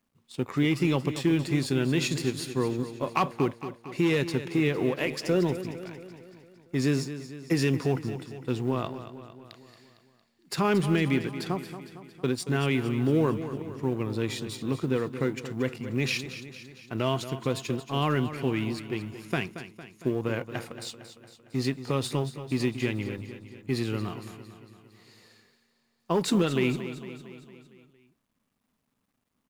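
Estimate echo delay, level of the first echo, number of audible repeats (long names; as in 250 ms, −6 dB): 228 ms, −12.0 dB, 5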